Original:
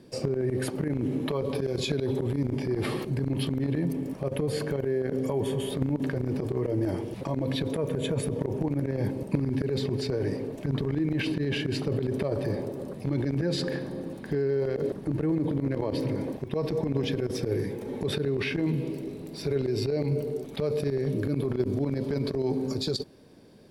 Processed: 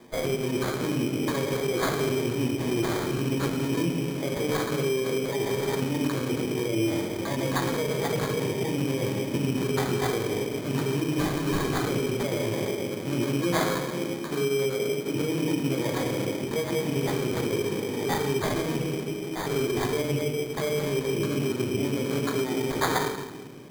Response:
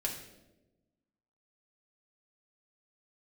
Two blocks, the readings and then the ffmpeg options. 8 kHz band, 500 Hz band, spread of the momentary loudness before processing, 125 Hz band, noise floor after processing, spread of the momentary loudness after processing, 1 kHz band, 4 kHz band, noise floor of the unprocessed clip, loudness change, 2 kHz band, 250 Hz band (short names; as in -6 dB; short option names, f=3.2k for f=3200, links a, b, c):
+10.0 dB, +2.0 dB, 4 LU, -1.0 dB, -33 dBFS, 3 LU, +10.0 dB, +4.0 dB, -41 dBFS, +2.0 dB, +7.0 dB, +1.5 dB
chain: -filter_complex "[0:a]aemphasis=mode=production:type=bsi[a];[1:a]atrim=start_sample=2205,asetrate=24696,aresample=44100[b];[a][b]afir=irnorm=-1:irlink=0,acrossover=split=230|3100[c][d][e];[d]alimiter=limit=-21dB:level=0:latency=1:release=181[f];[c][f][e]amix=inputs=3:normalize=0,highpass=110,lowpass=5.8k,acrusher=samples=16:mix=1:aa=0.000001"